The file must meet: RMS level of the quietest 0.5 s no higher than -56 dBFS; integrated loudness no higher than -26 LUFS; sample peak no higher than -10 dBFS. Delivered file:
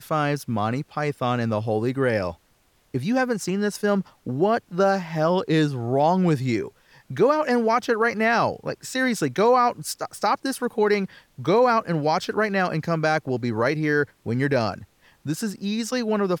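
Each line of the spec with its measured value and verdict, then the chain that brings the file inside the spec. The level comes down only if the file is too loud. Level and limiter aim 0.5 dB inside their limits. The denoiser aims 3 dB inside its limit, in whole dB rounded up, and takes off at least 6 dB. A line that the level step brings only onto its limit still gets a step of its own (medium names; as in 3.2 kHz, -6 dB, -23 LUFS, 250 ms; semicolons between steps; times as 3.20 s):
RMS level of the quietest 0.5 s -63 dBFS: pass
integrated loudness -23.0 LUFS: fail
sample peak -9.0 dBFS: fail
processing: trim -3.5 dB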